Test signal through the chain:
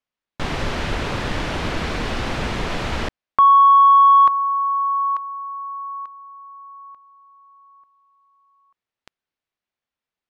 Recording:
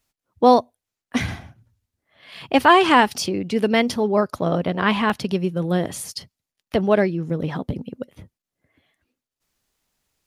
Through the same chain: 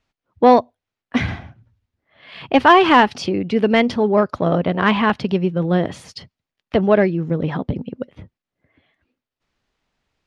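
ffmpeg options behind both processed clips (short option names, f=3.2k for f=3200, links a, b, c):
-af "lowpass=3.4k,acontrast=20,volume=-1dB"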